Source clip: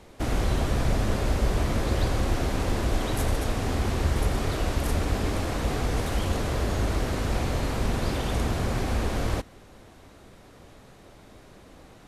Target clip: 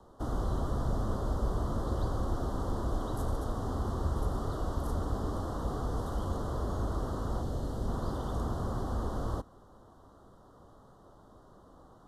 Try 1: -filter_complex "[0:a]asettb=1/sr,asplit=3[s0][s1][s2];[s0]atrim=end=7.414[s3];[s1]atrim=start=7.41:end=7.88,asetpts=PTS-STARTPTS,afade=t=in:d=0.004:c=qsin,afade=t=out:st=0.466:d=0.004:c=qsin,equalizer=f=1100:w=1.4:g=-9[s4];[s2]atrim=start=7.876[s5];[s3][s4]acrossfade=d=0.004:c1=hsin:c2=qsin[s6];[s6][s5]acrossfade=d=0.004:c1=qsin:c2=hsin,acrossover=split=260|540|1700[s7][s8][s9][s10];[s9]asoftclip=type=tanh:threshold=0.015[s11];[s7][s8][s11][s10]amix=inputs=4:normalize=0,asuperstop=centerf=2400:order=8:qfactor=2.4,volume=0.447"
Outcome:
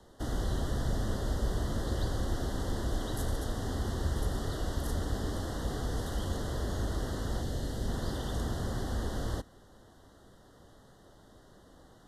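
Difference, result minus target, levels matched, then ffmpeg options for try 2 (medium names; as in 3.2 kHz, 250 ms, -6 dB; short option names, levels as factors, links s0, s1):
4 kHz band +9.0 dB
-filter_complex "[0:a]asettb=1/sr,asplit=3[s0][s1][s2];[s0]atrim=end=7.414[s3];[s1]atrim=start=7.41:end=7.88,asetpts=PTS-STARTPTS,afade=t=in:d=0.004:c=qsin,afade=t=out:st=0.466:d=0.004:c=qsin,equalizer=f=1100:w=1.4:g=-9[s4];[s2]atrim=start=7.876[s5];[s3][s4]acrossfade=d=0.004:c1=hsin:c2=qsin[s6];[s6][s5]acrossfade=d=0.004:c1=qsin:c2=hsin,acrossover=split=260|540|1700[s7][s8][s9][s10];[s9]asoftclip=type=tanh:threshold=0.015[s11];[s7][s8][s11][s10]amix=inputs=4:normalize=0,asuperstop=centerf=2400:order=8:qfactor=2.4,highshelf=f=1500:t=q:w=3:g=-7.5,volume=0.447"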